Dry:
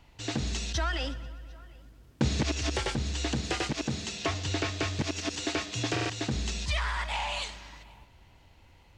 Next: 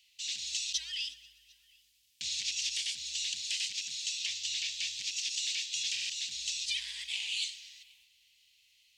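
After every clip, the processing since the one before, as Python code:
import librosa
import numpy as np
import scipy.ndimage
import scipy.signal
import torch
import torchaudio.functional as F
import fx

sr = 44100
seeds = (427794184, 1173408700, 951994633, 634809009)

y = scipy.signal.sosfilt(scipy.signal.cheby2(4, 40, 1400.0, 'highpass', fs=sr, output='sos'), x)
y = y * librosa.db_to_amplitude(3.5)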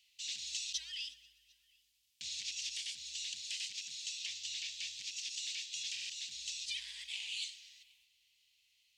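y = fx.rider(x, sr, range_db=10, speed_s=2.0)
y = y * librosa.db_to_amplitude(-6.5)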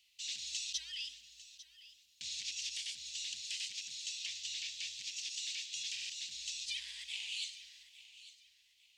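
y = fx.echo_feedback(x, sr, ms=849, feedback_pct=29, wet_db=-16.0)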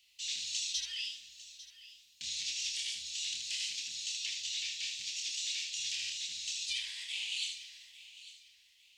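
y = fx.room_early_taps(x, sr, ms=(27, 78), db=(-4.5, -5.5))
y = y * librosa.db_to_amplitude(2.0)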